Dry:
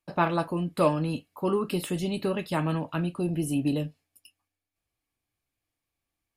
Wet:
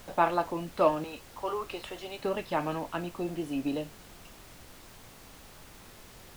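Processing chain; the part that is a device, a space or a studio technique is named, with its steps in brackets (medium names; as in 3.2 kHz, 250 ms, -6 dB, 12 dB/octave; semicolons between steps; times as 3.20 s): 1.04–2.24 s: high-pass 520 Hz 12 dB/octave; horn gramophone (band-pass 270–4100 Hz; peaking EQ 770 Hz +5 dB; wow and flutter; pink noise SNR 17 dB); trim -2.5 dB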